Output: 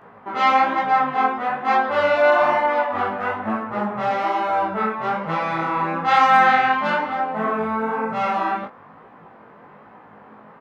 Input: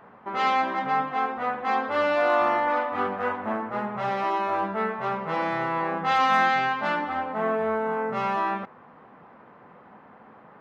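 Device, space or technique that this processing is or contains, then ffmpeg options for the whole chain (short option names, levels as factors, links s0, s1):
double-tracked vocal: -filter_complex "[0:a]asplit=2[s0][s1];[s1]adelay=19,volume=0.501[s2];[s0][s2]amix=inputs=2:normalize=0,flanger=delay=16.5:depth=7.3:speed=1.1,volume=2.11"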